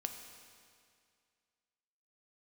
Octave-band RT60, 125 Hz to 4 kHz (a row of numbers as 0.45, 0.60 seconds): 2.2, 2.2, 2.2, 2.2, 2.2, 2.1 seconds